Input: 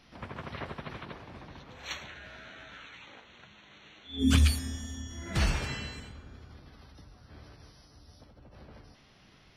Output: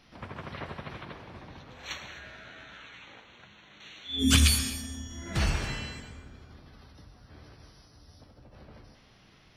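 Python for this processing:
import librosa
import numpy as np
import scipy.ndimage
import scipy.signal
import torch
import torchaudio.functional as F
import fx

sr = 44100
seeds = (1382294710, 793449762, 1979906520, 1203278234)

p1 = fx.high_shelf(x, sr, hz=2000.0, db=10.5, at=(3.8, 4.7))
p2 = p1 + fx.echo_feedback(p1, sr, ms=127, feedback_pct=48, wet_db=-21, dry=0)
y = fx.rev_gated(p2, sr, seeds[0], gate_ms=290, shape='flat', drr_db=9.5)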